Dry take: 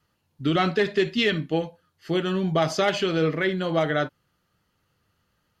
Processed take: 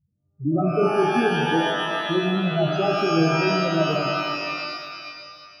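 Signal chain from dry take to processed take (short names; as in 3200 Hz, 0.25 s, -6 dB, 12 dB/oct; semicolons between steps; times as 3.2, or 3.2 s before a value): half-waves squared off; loudest bins only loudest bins 4; band shelf 2500 Hz -14 dB; shimmer reverb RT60 2.1 s, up +12 st, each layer -2 dB, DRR 3 dB; gain -2.5 dB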